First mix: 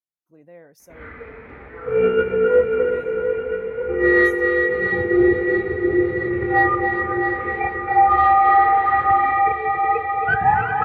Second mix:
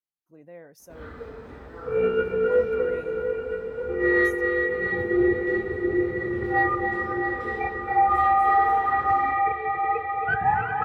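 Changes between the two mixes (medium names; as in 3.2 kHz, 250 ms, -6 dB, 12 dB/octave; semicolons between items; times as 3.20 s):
first sound: remove resonant low-pass 2.2 kHz, resonance Q 6.9; second sound -5.5 dB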